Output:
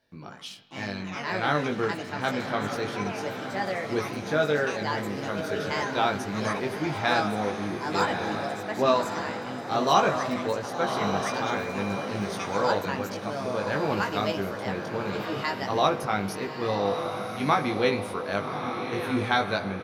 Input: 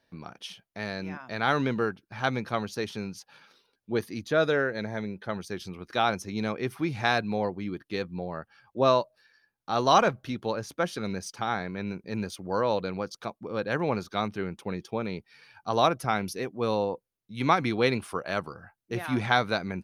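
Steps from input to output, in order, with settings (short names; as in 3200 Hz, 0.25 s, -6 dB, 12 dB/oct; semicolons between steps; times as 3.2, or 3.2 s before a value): doubler 20 ms -4 dB; spring tank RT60 1.5 s, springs 36/40 ms, chirp 70 ms, DRR 13 dB; echoes that change speed 0.115 s, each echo +4 st, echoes 2, each echo -6 dB; diffused feedback echo 1.159 s, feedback 42%, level -6.5 dB; 11.28–12.04 whine 2400 Hz -39 dBFS; gain -2 dB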